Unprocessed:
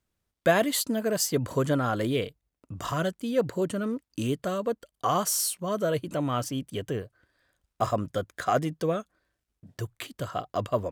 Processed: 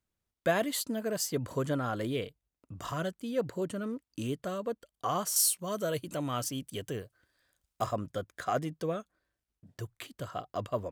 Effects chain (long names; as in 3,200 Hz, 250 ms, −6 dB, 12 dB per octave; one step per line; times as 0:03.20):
0:05.36–0:07.84: high-shelf EQ 3,500 Hz +9.5 dB
level −6 dB